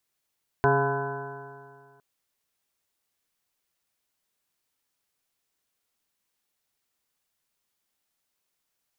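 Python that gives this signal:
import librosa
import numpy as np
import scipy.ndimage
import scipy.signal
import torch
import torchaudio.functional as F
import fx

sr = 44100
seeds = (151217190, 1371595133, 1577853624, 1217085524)

y = fx.additive_stiff(sr, length_s=1.36, hz=136.0, level_db=-24.0, upper_db=(-8.0, 3.0, -16.5, 0, -6.0, 0.5, -19.0, -13.0, -2, -17.0), decay_s=2.08, stiffness=0.0023)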